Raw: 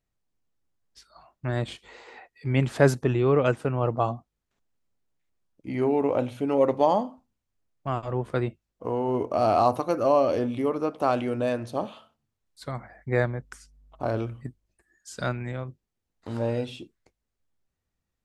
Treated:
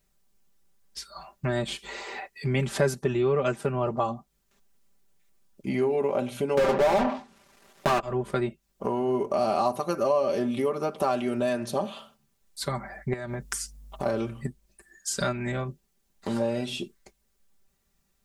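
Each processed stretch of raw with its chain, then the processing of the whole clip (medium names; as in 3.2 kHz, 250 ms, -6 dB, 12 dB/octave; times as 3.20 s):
6.57–8.00 s: block-companded coder 3-bit + low-pass that closes with the level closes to 1.9 kHz, closed at -21 dBFS + overdrive pedal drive 34 dB, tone 1.1 kHz, clips at -8 dBFS
13.13–14.06 s: treble shelf 4.8 kHz +7.5 dB + compression 16:1, threshold -32 dBFS
whole clip: treble shelf 5.3 kHz +8.5 dB; comb 5.1 ms, depth 79%; compression 2.5:1, threshold -35 dBFS; trim +7 dB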